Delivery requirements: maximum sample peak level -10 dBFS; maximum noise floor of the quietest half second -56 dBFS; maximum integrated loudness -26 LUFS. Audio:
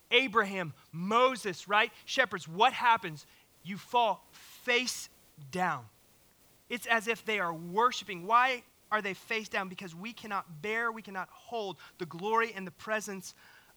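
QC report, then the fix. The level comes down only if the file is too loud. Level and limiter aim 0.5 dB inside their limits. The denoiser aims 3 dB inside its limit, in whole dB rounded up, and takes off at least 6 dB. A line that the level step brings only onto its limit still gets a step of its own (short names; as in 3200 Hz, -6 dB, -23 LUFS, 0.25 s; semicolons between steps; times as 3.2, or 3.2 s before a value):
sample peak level -9.0 dBFS: fail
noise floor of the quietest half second -64 dBFS: OK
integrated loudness -31.0 LUFS: OK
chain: limiter -10.5 dBFS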